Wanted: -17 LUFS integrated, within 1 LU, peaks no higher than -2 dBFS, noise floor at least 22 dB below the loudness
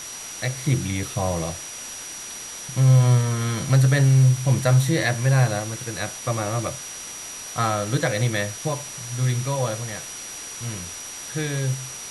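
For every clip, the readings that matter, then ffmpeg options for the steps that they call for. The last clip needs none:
steady tone 5800 Hz; tone level -36 dBFS; noise floor -36 dBFS; noise floor target -45 dBFS; loudness -23.0 LUFS; peak -7.5 dBFS; loudness target -17.0 LUFS
-> -af "bandreject=f=5.8k:w=30"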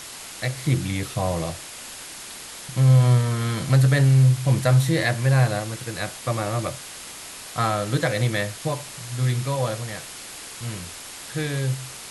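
steady tone none; noise floor -39 dBFS; noise floor target -45 dBFS
-> -af "afftdn=nr=6:nf=-39"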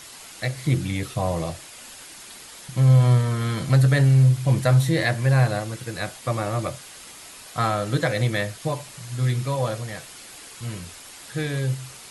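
noise floor -43 dBFS; noise floor target -45 dBFS
-> -af "afftdn=nr=6:nf=-43"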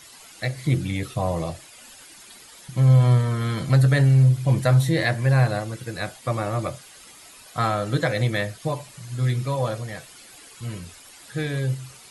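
noise floor -47 dBFS; loudness -22.5 LUFS; peak -8.0 dBFS; loudness target -17.0 LUFS
-> -af "volume=5.5dB"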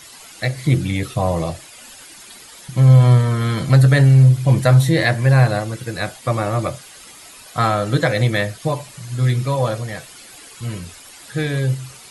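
loudness -17.0 LUFS; peak -2.5 dBFS; noise floor -42 dBFS

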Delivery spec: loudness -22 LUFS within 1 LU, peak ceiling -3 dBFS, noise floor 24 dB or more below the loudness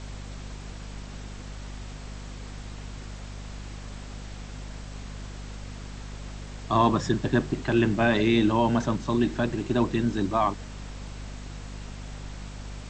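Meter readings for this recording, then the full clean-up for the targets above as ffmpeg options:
hum 50 Hz; harmonics up to 250 Hz; hum level -37 dBFS; noise floor -40 dBFS; noise floor target -49 dBFS; loudness -24.5 LUFS; peak -9.0 dBFS; loudness target -22.0 LUFS
-> -af "bandreject=f=50:t=h:w=4,bandreject=f=100:t=h:w=4,bandreject=f=150:t=h:w=4,bandreject=f=200:t=h:w=4,bandreject=f=250:t=h:w=4"
-af "afftdn=nr=9:nf=-40"
-af "volume=2.5dB"

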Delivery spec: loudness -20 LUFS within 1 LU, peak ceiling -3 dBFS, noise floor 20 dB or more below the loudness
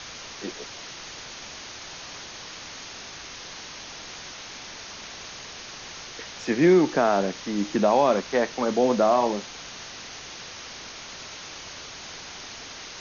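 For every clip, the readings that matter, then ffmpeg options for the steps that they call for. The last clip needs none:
noise floor -41 dBFS; noise floor target -48 dBFS; loudness -28.0 LUFS; peak -8.5 dBFS; loudness target -20.0 LUFS
-> -af "afftdn=nr=7:nf=-41"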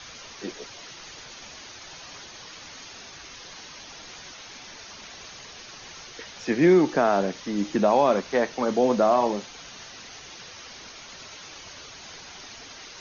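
noise floor -44 dBFS; loudness -23.0 LUFS; peak -8.5 dBFS; loudness target -20.0 LUFS
-> -af "volume=3dB"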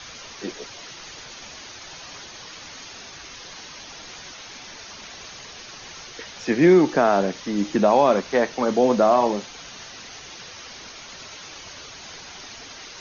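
loudness -20.0 LUFS; peak -5.5 dBFS; noise floor -41 dBFS

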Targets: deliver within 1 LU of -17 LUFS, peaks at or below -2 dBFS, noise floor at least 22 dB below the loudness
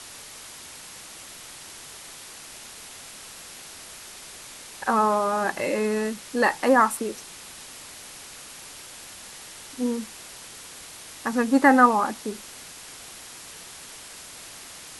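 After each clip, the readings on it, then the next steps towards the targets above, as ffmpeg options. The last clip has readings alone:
noise floor -43 dBFS; noise floor target -45 dBFS; loudness -22.5 LUFS; peak -4.5 dBFS; loudness target -17.0 LUFS
-> -af "afftdn=nr=6:nf=-43"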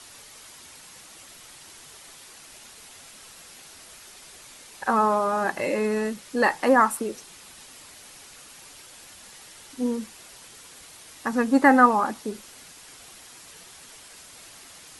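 noise floor -48 dBFS; loudness -23.0 LUFS; peak -4.5 dBFS; loudness target -17.0 LUFS
-> -af "volume=6dB,alimiter=limit=-2dB:level=0:latency=1"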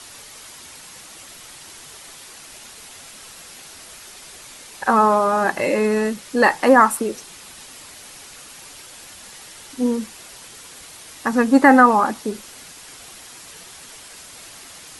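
loudness -17.0 LUFS; peak -2.0 dBFS; noise floor -42 dBFS

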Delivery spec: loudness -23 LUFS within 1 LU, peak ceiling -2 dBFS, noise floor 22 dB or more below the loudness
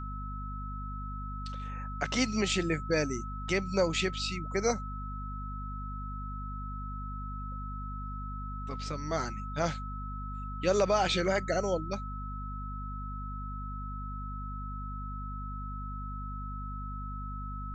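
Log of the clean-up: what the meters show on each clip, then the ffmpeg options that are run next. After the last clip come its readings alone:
hum 50 Hz; harmonics up to 250 Hz; hum level -36 dBFS; steady tone 1300 Hz; tone level -41 dBFS; loudness -34.5 LUFS; peak -14.5 dBFS; loudness target -23.0 LUFS
-> -af "bandreject=f=50:t=h:w=4,bandreject=f=100:t=h:w=4,bandreject=f=150:t=h:w=4,bandreject=f=200:t=h:w=4,bandreject=f=250:t=h:w=4"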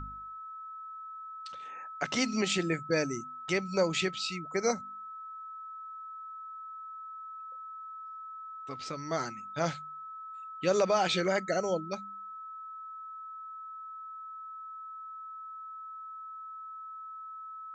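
hum none; steady tone 1300 Hz; tone level -41 dBFS
-> -af "bandreject=f=1.3k:w=30"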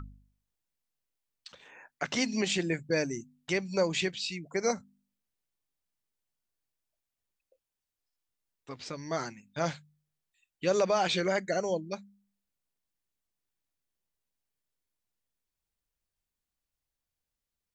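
steady tone none; loudness -31.5 LUFS; peak -14.5 dBFS; loudness target -23.0 LUFS
-> -af "volume=8.5dB"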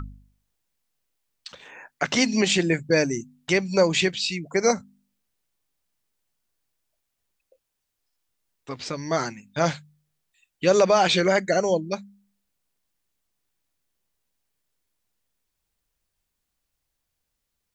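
loudness -23.0 LUFS; peak -6.0 dBFS; noise floor -80 dBFS

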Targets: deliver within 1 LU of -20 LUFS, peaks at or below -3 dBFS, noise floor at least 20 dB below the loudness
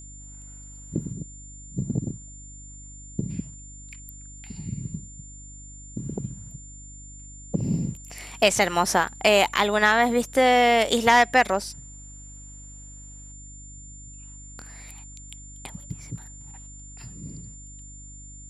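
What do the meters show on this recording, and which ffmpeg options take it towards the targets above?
hum 50 Hz; harmonics up to 300 Hz; hum level -43 dBFS; steady tone 7200 Hz; tone level -44 dBFS; loudness -22.5 LUFS; peak -4.0 dBFS; loudness target -20.0 LUFS
-> -af "bandreject=f=50:t=h:w=4,bandreject=f=100:t=h:w=4,bandreject=f=150:t=h:w=4,bandreject=f=200:t=h:w=4,bandreject=f=250:t=h:w=4,bandreject=f=300:t=h:w=4"
-af "bandreject=f=7.2k:w=30"
-af "volume=2.5dB,alimiter=limit=-3dB:level=0:latency=1"

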